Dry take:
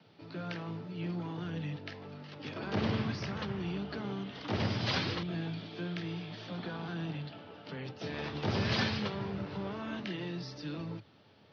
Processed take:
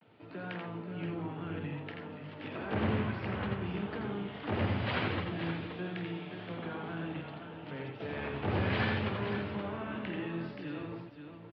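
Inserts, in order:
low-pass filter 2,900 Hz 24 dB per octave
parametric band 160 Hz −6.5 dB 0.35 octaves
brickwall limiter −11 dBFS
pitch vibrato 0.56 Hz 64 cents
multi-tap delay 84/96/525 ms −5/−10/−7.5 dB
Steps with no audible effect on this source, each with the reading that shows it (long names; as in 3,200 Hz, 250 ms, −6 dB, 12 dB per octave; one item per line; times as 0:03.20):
brickwall limiter −11 dBFS: peak of its input −19.5 dBFS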